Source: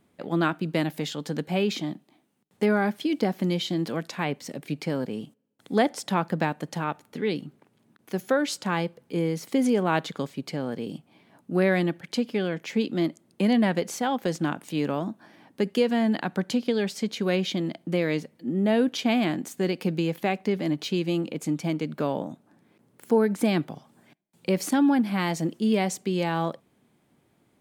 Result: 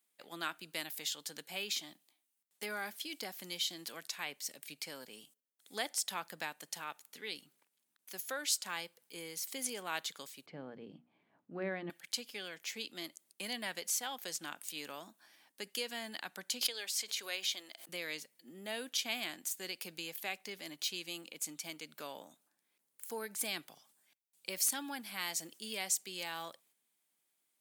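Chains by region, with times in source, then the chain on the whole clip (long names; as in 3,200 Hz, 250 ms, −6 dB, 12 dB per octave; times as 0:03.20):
0:10.46–0:11.90: low-pass filter 2,400 Hz + spectral tilt −4.5 dB per octave + mains-hum notches 60/120/180/240/300/360 Hz
0:16.61–0:17.89: high-pass filter 440 Hz + background raised ahead of every attack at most 77 dB per second
whole clip: noise gate −54 dBFS, range −6 dB; first difference; level +2.5 dB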